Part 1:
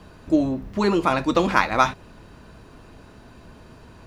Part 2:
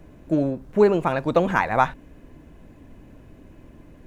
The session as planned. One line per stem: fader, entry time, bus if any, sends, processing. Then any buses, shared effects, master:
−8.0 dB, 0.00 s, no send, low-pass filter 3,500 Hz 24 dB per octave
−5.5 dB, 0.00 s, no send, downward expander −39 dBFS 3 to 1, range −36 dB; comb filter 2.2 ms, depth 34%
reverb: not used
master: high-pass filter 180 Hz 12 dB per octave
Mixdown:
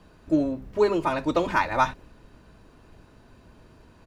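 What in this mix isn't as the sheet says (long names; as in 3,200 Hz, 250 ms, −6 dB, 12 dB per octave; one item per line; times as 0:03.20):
stem 1: missing low-pass filter 3,500 Hz 24 dB per octave
master: missing high-pass filter 180 Hz 12 dB per octave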